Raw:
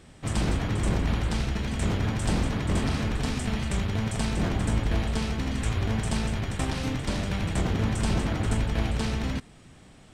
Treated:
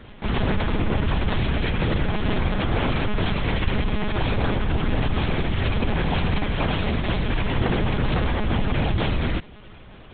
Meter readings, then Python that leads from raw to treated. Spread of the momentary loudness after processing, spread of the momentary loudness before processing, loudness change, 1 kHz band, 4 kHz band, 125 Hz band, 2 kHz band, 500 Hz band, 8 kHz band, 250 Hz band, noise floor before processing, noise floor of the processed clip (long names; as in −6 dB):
2 LU, 3 LU, +3.5 dB, +6.5 dB, +5.0 dB, +3.0 dB, +6.5 dB, +6.5 dB, below −40 dB, +3.0 dB, −52 dBFS, −44 dBFS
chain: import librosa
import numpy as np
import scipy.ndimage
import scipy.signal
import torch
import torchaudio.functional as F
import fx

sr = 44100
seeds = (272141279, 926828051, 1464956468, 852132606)

y = x + 0.8 * np.pad(x, (int(2.5 * sr / 1000.0), 0))[:len(x)]
y = np.clip(10.0 ** (25.5 / 20.0) * y, -1.0, 1.0) / 10.0 ** (25.5 / 20.0)
y = fx.lpc_monotone(y, sr, seeds[0], pitch_hz=210.0, order=10)
y = y * 10.0 ** (6.5 / 20.0)